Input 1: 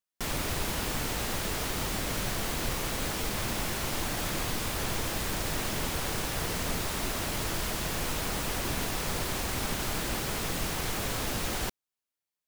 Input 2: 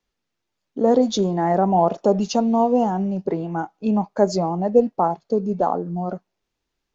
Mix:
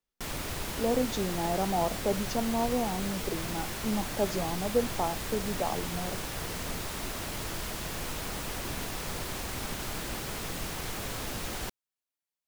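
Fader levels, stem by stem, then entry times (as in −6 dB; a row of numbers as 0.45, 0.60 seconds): −4.0, −11.5 decibels; 0.00, 0.00 seconds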